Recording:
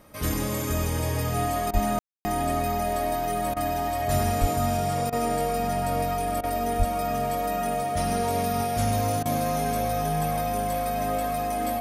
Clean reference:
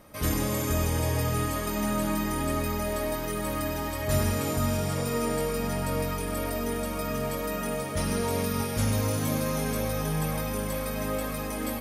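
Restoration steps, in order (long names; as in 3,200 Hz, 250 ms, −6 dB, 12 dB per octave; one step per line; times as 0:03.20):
notch filter 710 Hz, Q 30
0:01.73–0:01.85: high-pass filter 140 Hz 24 dB per octave
0:04.40–0:04.52: high-pass filter 140 Hz 24 dB per octave
0:06.78–0:06.90: high-pass filter 140 Hz 24 dB per octave
ambience match 0:01.99–0:02.25
repair the gap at 0:01.71/0:03.54/0:05.10/0:06.41/0:09.23, 24 ms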